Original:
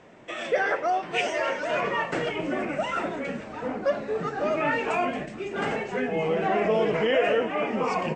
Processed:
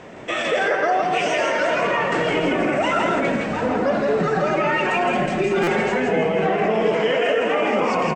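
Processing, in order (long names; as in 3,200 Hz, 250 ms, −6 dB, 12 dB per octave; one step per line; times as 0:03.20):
0:04.19–0:05.81: comb filter 5.4 ms, depth 91%
0:06.84–0:07.80: bass and treble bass −7 dB, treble +5 dB
in parallel at +1.5 dB: speech leveller within 3 dB
on the sum: brickwall limiter −17 dBFS, peak gain reduction 12 dB
single-tap delay 164 ms −3.5 dB
on a send at −11 dB: convolution reverb RT60 0.60 s, pre-delay 76 ms
on the sum: buffer that repeats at 0:05.63, samples 256, times 6
level +3 dB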